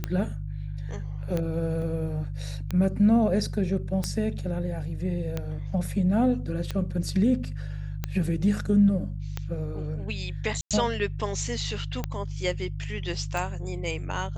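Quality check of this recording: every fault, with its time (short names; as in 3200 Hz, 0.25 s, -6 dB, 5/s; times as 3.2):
hum 50 Hz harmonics 3 -33 dBFS
tick 45 rpm -15 dBFS
1.82 gap 2.3 ms
10.61–10.71 gap 97 ms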